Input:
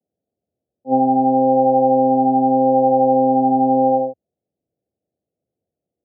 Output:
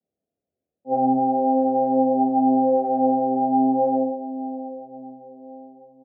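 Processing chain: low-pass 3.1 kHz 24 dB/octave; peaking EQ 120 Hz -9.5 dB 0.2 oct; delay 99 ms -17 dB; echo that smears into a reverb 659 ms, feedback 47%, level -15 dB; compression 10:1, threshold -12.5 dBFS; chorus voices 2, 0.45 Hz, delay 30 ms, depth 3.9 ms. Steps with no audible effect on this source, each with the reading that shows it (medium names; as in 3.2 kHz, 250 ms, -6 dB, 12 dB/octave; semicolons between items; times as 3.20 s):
low-pass 3.1 kHz: input has nothing above 810 Hz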